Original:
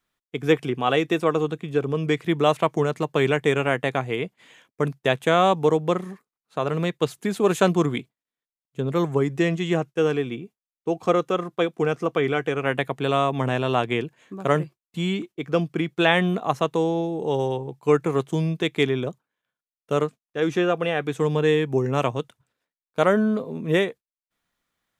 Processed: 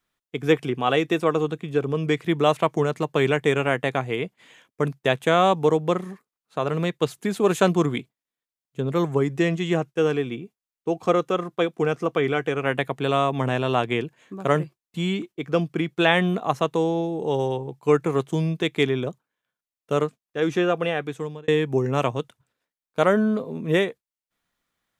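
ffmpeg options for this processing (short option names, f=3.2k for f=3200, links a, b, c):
-filter_complex "[0:a]asplit=2[a][b];[a]atrim=end=21.48,asetpts=PTS-STARTPTS,afade=t=out:st=20.87:d=0.61[c];[b]atrim=start=21.48,asetpts=PTS-STARTPTS,afade=t=in:d=0.004:c=hsin[d];[c][d]concat=n=2:v=0:a=1"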